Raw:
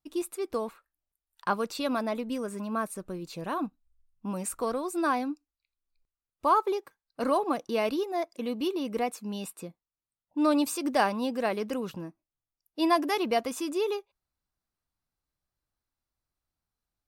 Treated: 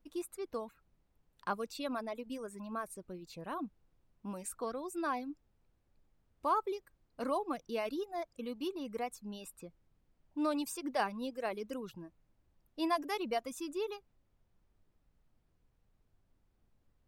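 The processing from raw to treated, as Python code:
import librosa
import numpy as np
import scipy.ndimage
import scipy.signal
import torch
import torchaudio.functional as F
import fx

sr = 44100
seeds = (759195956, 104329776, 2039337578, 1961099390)

y = fx.dereverb_blind(x, sr, rt60_s=1.0)
y = fx.dmg_noise_colour(y, sr, seeds[0], colour='brown', level_db=-63.0)
y = y * librosa.db_to_amplitude(-8.0)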